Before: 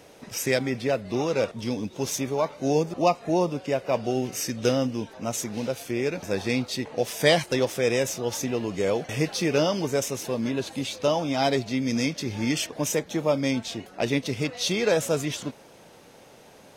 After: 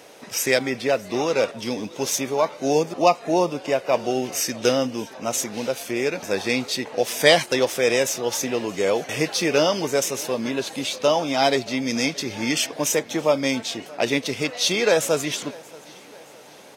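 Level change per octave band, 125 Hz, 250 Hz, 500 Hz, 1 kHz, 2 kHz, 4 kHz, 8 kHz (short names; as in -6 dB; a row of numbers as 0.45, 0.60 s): -3.5, +1.0, +4.0, +5.0, +6.0, +6.0, +6.0 dB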